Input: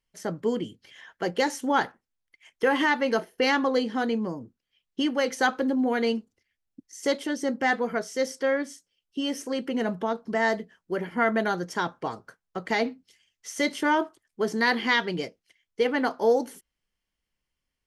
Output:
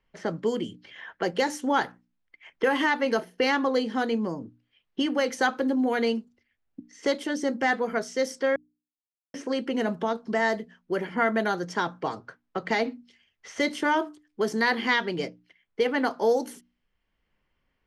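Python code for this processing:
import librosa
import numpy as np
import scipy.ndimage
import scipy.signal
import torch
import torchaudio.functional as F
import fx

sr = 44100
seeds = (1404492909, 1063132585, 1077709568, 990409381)

y = fx.edit(x, sr, fx.silence(start_s=8.56, length_s=0.78), tone=tone)
y = fx.env_lowpass(y, sr, base_hz=2200.0, full_db=-23.0)
y = fx.hum_notches(y, sr, base_hz=60, count=5)
y = fx.band_squash(y, sr, depth_pct=40)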